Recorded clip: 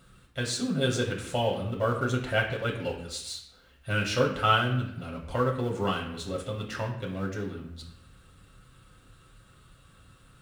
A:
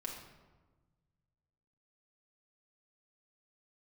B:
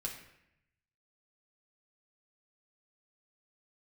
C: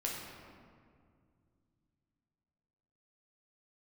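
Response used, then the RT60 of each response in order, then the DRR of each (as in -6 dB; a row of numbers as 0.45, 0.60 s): B; 1.3, 0.80, 2.2 s; -2.0, -1.0, -3.0 dB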